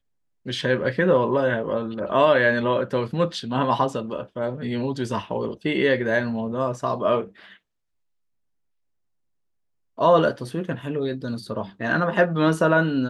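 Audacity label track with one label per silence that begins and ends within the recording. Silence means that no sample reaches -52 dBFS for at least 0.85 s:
7.570000	9.970000	silence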